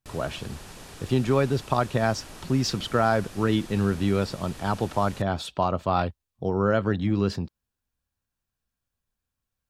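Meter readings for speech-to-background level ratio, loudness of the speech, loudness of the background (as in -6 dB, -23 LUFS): 17.5 dB, -26.0 LUFS, -43.5 LUFS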